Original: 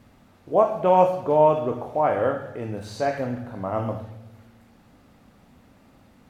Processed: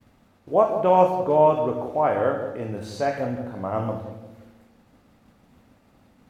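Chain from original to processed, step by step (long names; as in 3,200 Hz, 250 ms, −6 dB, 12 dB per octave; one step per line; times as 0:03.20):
downward expander −50 dBFS
feedback echo with a band-pass in the loop 175 ms, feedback 42%, band-pass 350 Hz, level −7.5 dB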